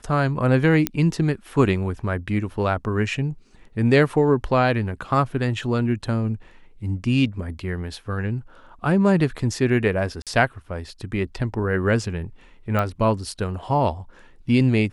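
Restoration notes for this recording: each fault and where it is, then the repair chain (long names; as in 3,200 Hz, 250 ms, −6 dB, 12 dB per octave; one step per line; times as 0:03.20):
0:00.87: click −5 dBFS
0:10.22–0:10.27: drop-out 47 ms
0:12.79: click −12 dBFS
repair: click removal
repair the gap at 0:10.22, 47 ms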